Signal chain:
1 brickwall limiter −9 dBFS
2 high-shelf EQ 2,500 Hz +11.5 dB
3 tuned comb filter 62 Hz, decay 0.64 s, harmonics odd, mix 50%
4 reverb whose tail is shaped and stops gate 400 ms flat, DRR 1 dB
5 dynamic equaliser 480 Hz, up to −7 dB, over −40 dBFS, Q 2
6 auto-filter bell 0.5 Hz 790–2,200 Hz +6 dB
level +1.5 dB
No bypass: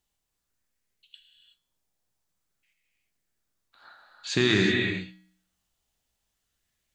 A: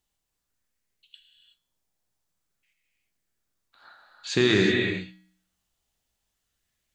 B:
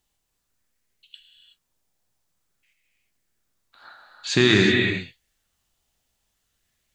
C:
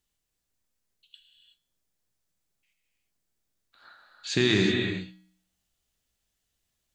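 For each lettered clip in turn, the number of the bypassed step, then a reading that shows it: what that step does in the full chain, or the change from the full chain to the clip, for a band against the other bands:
5, change in integrated loudness +1.0 LU
3, change in integrated loudness +5.5 LU
6, 1 kHz band −3.0 dB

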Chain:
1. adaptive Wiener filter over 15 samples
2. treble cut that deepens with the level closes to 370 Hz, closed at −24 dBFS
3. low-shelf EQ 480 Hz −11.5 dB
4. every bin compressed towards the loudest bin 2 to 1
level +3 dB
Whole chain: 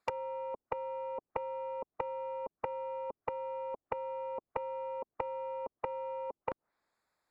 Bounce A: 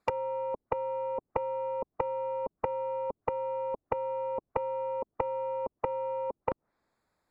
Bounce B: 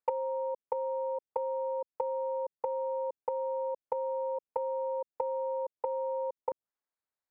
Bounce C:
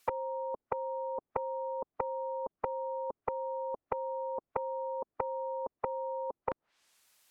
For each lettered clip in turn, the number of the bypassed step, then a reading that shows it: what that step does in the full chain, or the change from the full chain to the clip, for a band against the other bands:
3, 2 kHz band −4.5 dB
4, change in crest factor −5.0 dB
1, 2 kHz band −4.5 dB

